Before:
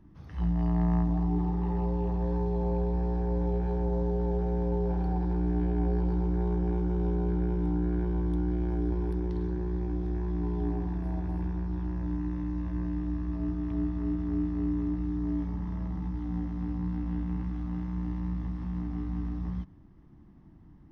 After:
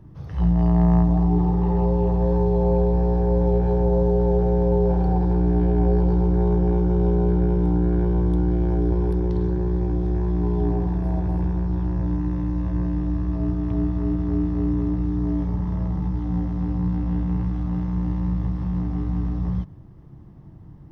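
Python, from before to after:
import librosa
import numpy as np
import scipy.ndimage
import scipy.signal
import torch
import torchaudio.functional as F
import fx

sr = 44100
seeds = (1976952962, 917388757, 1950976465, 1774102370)

y = fx.graphic_eq(x, sr, hz=(125, 250, 500, 2000), db=(9, -6, 7, -3))
y = y * 10.0 ** (7.0 / 20.0)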